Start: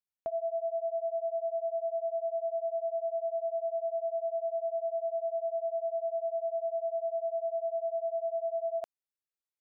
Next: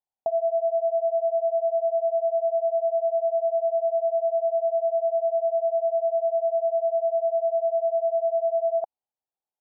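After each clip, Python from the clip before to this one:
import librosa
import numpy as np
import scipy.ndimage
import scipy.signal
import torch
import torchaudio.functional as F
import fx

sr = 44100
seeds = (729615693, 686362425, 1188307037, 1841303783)

y = fx.lowpass_res(x, sr, hz=800.0, q=4.9)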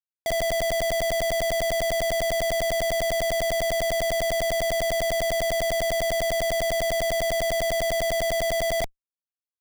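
y = fx.schmitt(x, sr, flips_db=-33.0)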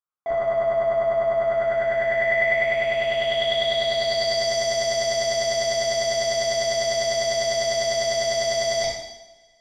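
y = fx.filter_sweep_lowpass(x, sr, from_hz=1200.0, to_hz=5400.0, start_s=1.3, end_s=4.52, q=6.0)
y = fx.low_shelf(y, sr, hz=92.0, db=-8.0)
y = fx.rev_double_slope(y, sr, seeds[0], early_s=0.86, late_s=2.7, knee_db=-25, drr_db=-7.5)
y = F.gain(torch.from_numpy(y), -7.0).numpy()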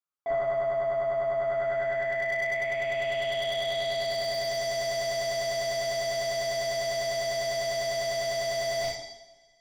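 y = x + 0.5 * np.pad(x, (int(7.1 * sr / 1000.0), 0))[:len(x)]
y = fx.rider(y, sr, range_db=3, speed_s=0.5)
y = fx.slew_limit(y, sr, full_power_hz=200.0)
y = F.gain(torch.from_numpy(y), -7.0).numpy()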